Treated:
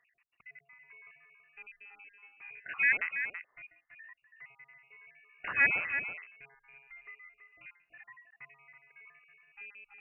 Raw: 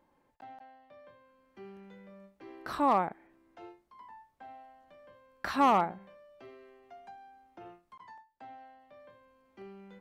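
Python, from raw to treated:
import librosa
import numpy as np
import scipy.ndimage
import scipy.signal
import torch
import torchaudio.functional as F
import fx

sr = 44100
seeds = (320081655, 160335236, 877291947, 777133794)

y = fx.spec_dropout(x, sr, seeds[0], share_pct=45)
y = y + 10.0 ** (-8.5 / 20.0) * np.pad(y, (int(329 * sr / 1000.0), 0))[:len(y)]
y = fx.freq_invert(y, sr, carrier_hz=2800)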